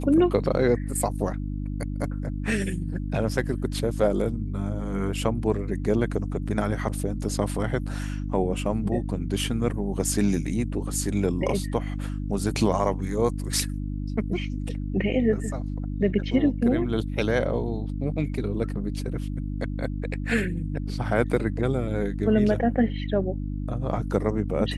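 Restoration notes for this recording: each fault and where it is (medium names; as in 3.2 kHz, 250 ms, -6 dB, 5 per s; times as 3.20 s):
hum 50 Hz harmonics 6 -30 dBFS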